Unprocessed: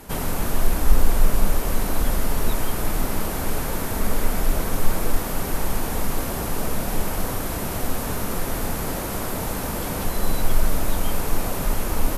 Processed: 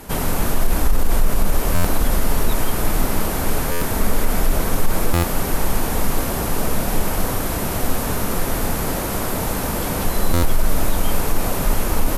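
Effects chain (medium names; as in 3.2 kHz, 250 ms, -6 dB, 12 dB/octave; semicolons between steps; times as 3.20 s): loudness maximiser +10 dB; buffer glitch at 1.74/3.71/5.13/10.33 s, samples 512, times 8; trim -5.5 dB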